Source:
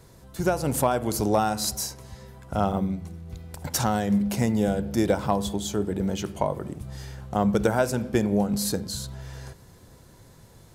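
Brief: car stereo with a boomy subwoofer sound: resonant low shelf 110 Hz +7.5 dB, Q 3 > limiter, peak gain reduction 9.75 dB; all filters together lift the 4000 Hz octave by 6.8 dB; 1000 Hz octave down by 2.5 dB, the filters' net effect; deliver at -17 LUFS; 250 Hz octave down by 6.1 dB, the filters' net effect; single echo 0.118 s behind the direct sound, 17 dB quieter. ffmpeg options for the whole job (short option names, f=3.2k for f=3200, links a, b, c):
-af "lowshelf=f=110:t=q:w=3:g=7.5,equalizer=f=250:t=o:g=-5,equalizer=f=1k:t=o:g=-3.5,equalizer=f=4k:t=o:g=8.5,aecho=1:1:118:0.141,volume=12dB,alimiter=limit=-7dB:level=0:latency=1"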